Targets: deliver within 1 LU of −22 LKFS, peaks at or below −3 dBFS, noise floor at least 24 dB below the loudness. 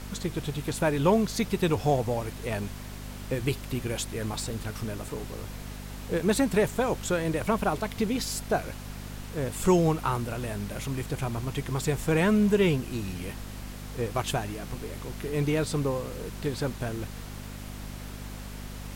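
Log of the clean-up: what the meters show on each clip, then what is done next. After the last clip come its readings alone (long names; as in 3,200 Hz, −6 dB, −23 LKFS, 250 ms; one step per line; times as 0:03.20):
mains hum 50 Hz; hum harmonics up to 250 Hz; level of the hum −38 dBFS; background noise floor −40 dBFS; target noise floor −53 dBFS; integrated loudness −29.0 LKFS; sample peak −11.0 dBFS; target loudness −22.0 LKFS
→ hum removal 50 Hz, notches 5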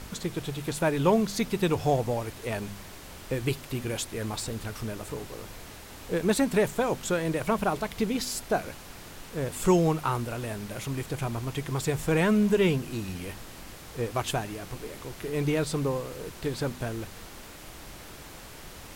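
mains hum none found; background noise floor −45 dBFS; target noise floor −53 dBFS
→ noise reduction from a noise print 8 dB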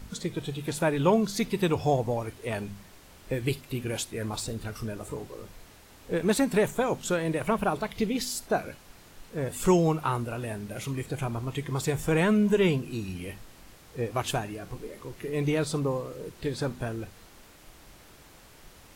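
background noise floor −53 dBFS; integrated loudness −29.0 LKFS; sample peak −10.5 dBFS; target loudness −22.0 LKFS
→ level +7 dB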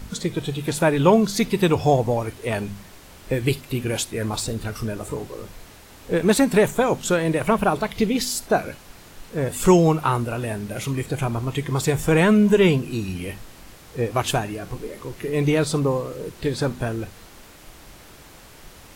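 integrated loudness −22.0 LKFS; sample peak −3.5 dBFS; background noise floor −46 dBFS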